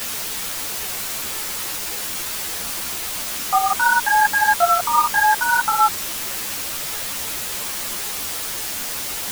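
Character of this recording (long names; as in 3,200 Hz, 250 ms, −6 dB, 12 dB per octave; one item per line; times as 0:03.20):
tremolo saw up 2.8 Hz, depth 40%
a quantiser's noise floor 6 bits, dither triangular
a shimmering, thickened sound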